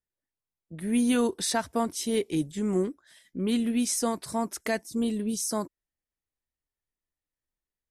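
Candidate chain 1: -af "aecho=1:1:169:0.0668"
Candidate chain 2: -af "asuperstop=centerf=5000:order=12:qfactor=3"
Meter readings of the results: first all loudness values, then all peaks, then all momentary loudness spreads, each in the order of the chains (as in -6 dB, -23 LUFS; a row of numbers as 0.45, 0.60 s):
-28.5, -28.5 LUFS; -15.0, -15.0 dBFS; 9, 8 LU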